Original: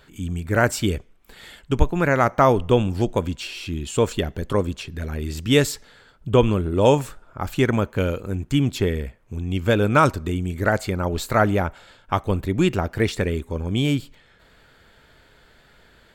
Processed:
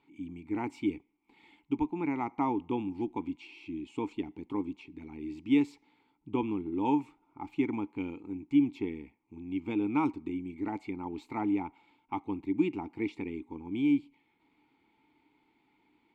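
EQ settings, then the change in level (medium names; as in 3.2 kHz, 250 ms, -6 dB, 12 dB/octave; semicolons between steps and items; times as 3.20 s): vowel filter u; 0.0 dB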